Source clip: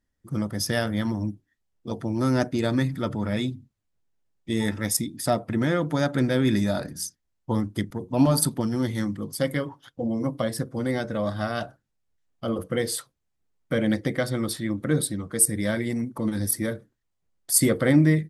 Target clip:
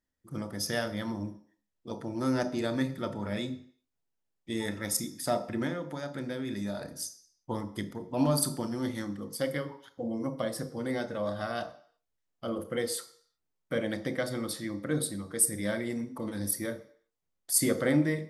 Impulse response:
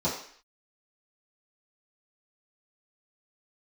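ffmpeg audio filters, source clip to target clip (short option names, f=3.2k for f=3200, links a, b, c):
-filter_complex "[0:a]bass=f=250:g=-6,treble=f=4k:g=0,asettb=1/sr,asplit=3[a][b][c];[a]atrim=end=5.674[d];[b]atrim=start=5.67:end=6.81,asetpts=PTS-STARTPTS,afade=t=in:d=0.004:c=qsin,afade=t=out:st=1.136:d=0.004:c=qsin,acompressor=threshold=-29dB:ratio=4[e];[c]atrim=start=6.806[f];[d][e]acrossfade=d=0.004:c1=hsin:c2=qsin[g];[g][f]acrossfade=d=0.004:c1=qsin:c2=hsin,asplit=2[h][i];[1:a]atrim=start_sample=2205,highshelf=f=7.2k:g=11.5,adelay=29[j];[i][j]afir=irnorm=-1:irlink=0,volume=-20dB[k];[h][k]amix=inputs=2:normalize=0,volume=-5.5dB"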